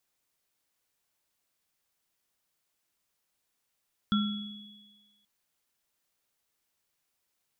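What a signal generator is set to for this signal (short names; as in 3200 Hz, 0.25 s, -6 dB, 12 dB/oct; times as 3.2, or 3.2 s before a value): sine partials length 1.13 s, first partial 208 Hz, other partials 1360/3370 Hz, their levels -7.5/-9 dB, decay 1.17 s, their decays 0.54/1.74 s, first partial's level -22 dB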